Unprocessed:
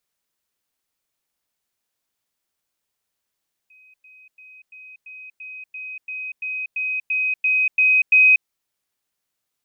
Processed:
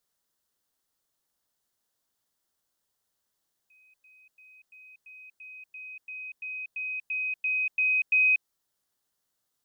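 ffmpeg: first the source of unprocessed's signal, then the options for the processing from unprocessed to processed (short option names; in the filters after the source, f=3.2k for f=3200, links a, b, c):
-f lavfi -i "aevalsrc='pow(10,(-48.5+3*floor(t/0.34))/20)*sin(2*PI*2520*t)*clip(min(mod(t,0.34),0.24-mod(t,0.34))/0.005,0,1)':d=4.76:s=44100"
-af "equalizer=f=2.4k:t=o:w=0.44:g=-10"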